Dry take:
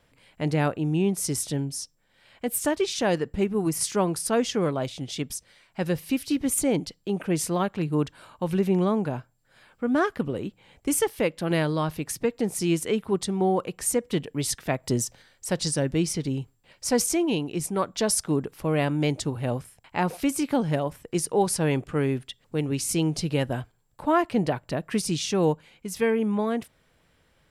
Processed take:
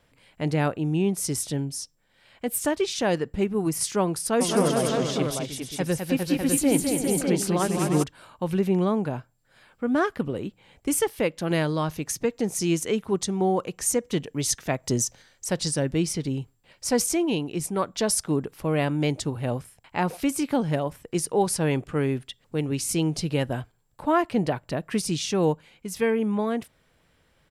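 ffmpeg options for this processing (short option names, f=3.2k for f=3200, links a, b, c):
-filter_complex "[0:a]asplit=3[a][b][c];[a]afade=t=out:st=4.4:d=0.02[d];[b]aecho=1:1:208|308|404|531|602:0.562|0.282|0.501|0.237|0.596,afade=t=in:st=4.4:d=0.02,afade=t=out:st=8.02:d=0.02[e];[c]afade=t=in:st=8.02:d=0.02[f];[d][e][f]amix=inputs=3:normalize=0,asettb=1/sr,asplit=3[g][h][i];[g]atrim=end=11.374[j];[h]atrim=start=11.37:end=15.49,asetpts=PTS-STARTPTS,afade=t=in:d=0.004:c=qsin,afade=t=out:st=4.116:d=0.004:c=qsin,equalizer=f=6.3k:t=o:w=0.35:g=8[k];[i]atrim=start=15.486[l];[j][k]acrossfade=d=0.004:c1=hsin:c2=qsin[m];[m][l]acrossfade=d=0.004:c1=qsin:c2=hsin"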